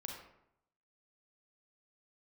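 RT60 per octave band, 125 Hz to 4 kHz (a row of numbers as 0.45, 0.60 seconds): 0.95, 0.80, 0.75, 0.75, 0.65, 0.45 seconds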